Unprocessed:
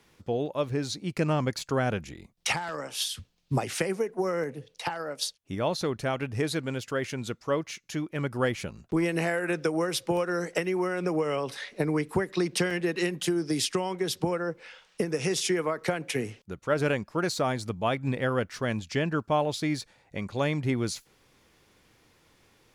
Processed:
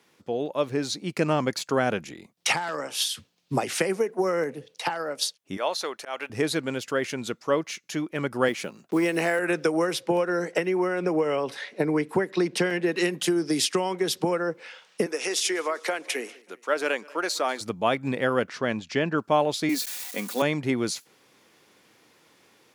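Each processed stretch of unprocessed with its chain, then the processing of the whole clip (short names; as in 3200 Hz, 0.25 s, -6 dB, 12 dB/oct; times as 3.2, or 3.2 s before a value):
5.57–6.3 HPF 620 Hz + auto swell 0.122 s
8.48–9.39 HPF 170 Hz + short-mantissa float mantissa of 4-bit
9.93–12.92 high shelf 3700 Hz -7 dB + notch 1200 Hz
15.06–17.61 HPF 240 Hz 24 dB/oct + low shelf 370 Hz -11.5 dB + feedback echo 0.195 s, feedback 48%, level -23.5 dB
18.48–19.18 upward compressor, threshold -39 dBFS + air absorption 72 m
19.69–20.42 switching spikes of -30 dBFS + Chebyshev high-pass 220 Hz, order 3 + comb 4.1 ms, depth 48%
whole clip: HPF 200 Hz 12 dB/oct; AGC gain up to 4 dB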